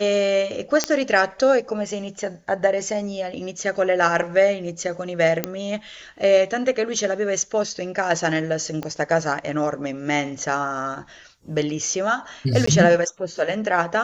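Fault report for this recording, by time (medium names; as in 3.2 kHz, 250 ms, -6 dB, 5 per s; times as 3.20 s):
0.84 s: pop -5 dBFS
5.44 s: pop -6 dBFS
8.83 s: pop -15 dBFS
12.66–12.67 s: dropout 14 ms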